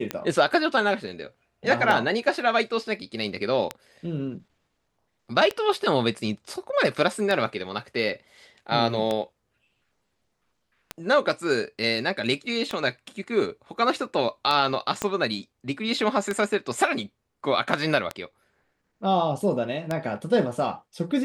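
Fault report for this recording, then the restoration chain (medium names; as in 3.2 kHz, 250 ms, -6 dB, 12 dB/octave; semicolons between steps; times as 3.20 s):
tick 33 1/3 rpm -12 dBFS
15.02 s: pop -11 dBFS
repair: de-click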